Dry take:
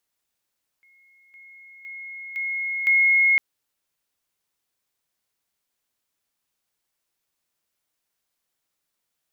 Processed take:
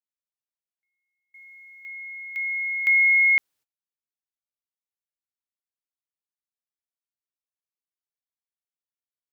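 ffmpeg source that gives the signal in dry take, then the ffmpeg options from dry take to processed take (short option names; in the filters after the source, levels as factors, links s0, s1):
-f lavfi -i "aevalsrc='pow(10,(-54.5+10*floor(t/0.51))/20)*sin(2*PI*2160*t)':d=2.55:s=44100"
-af "agate=range=0.0562:threshold=0.00224:ratio=16:detection=peak"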